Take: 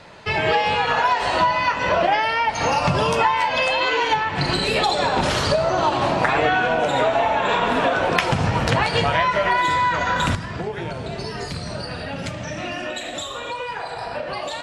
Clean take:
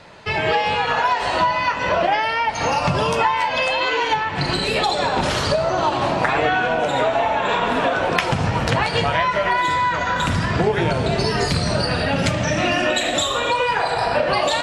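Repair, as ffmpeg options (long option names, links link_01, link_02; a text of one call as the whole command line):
ffmpeg -i in.wav -af "asetnsamples=nb_out_samples=441:pad=0,asendcmd='10.35 volume volume 9.5dB',volume=0dB" out.wav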